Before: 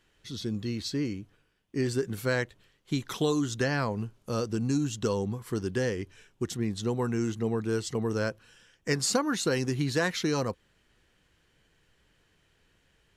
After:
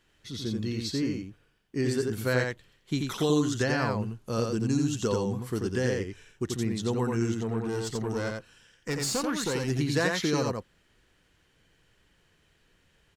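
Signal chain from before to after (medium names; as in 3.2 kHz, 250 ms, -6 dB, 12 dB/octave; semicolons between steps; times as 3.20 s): 7.34–9.70 s: valve stage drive 24 dB, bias 0.4; delay 87 ms -3.5 dB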